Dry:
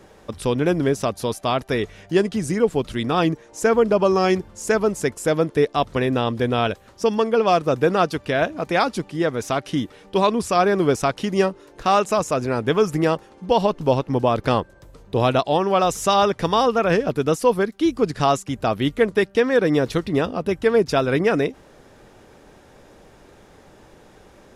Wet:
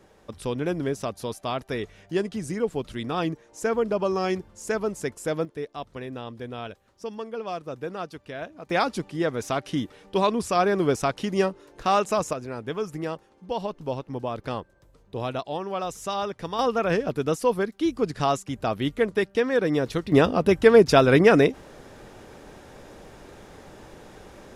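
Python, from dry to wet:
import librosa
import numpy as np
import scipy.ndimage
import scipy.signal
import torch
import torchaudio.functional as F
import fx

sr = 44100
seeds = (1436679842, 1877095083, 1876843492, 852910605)

y = fx.gain(x, sr, db=fx.steps((0.0, -7.5), (5.45, -15.0), (8.7, -4.0), (12.33, -11.5), (16.59, -5.0), (20.12, 3.0)))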